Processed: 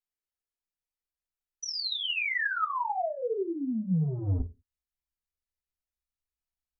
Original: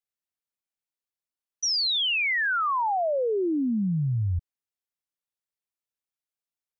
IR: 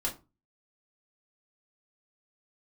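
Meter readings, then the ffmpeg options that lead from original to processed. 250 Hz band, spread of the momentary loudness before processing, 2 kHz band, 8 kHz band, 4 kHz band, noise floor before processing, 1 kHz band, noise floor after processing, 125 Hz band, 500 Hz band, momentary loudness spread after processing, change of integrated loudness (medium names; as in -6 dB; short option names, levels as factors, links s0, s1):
-4.5 dB, 6 LU, -5.0 dB, no reading, -7.5 dB, under -85 dBFS, -5.0 dB, under -85 dBFS, -3.0 dB, -6.0 dB, 5 LU, -5.5 dB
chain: -filter_complex "[0:a]acrossover=split=3500[s0][s1];[s1]acompressor=threshold=0.0316:ratio=4:attack=1:release=60[s2];[s0][s2]amix=inputs=2:normalize=0,asubboost=boost=8:cutoff=120,aeval=exprs='0.376*(cos(1*acos(clip(val(0)/0.376,-1,1)))-cos(1*PI/2))+0.00596*(cos(5*acos(clip(val(0)/0.376,-1,1)))-cos(5*PI/2))':c=same,acrossover=split=170|1000[s3][s4][s5];[s3]asoftclip=type=tanh:threshold=0.075[s6];[s6][s4][s5]amix=inputs=3:normalize=0[s7];[1:a]atrim=start_sample=2205,afade=t=out:st=0.37:d=0.01,atrim=end_sample=16758,asetrate=61740,aresample=44100[s8];[s7][s8]afir=irnorm=-1:irlink=0,volume=0.447"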